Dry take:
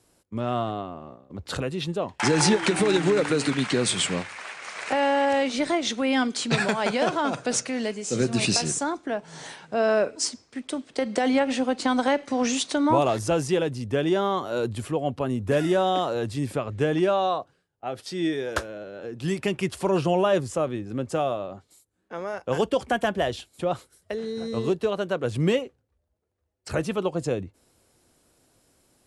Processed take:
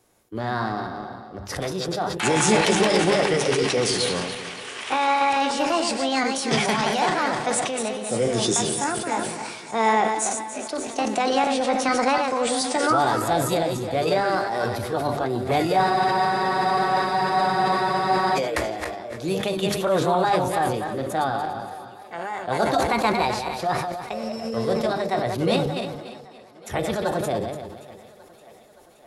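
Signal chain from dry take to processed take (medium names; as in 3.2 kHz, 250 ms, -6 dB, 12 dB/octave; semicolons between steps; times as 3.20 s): backward echo that repeats 145 ms, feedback 50%, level -6.5 dB; formant shift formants +5 st; hum notches 50/100/150/200 Hz; thinning echo 572 ms, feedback 69%, high-pass 160 Hz, level -21 dB; on a send at -12 dB: reverberation RT60 0.30 s, pre-delay 3 ms; on the sum: spectral freeze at 15.84 s, 2.52 s; decay stretcher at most 46 dB/s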